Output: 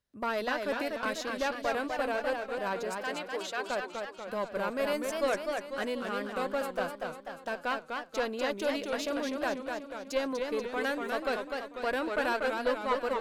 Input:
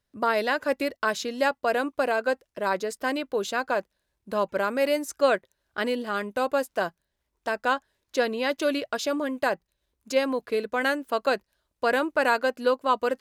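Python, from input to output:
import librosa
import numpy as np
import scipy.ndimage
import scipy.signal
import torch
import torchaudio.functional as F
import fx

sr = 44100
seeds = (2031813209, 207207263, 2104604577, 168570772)

y = fx.diode_clip(x, sr, knee_db=-19.0)
y = fx.weighting(y, sr, curve='A', at=(2.95, 3.69))
y = fx.echo_warbled(y, sr, ms=245, feedback_pct=57, rate_hz=2.8, cents=173, wet_db=-4.5)
y = y * 10.0 ** (-6.0 / 20.0)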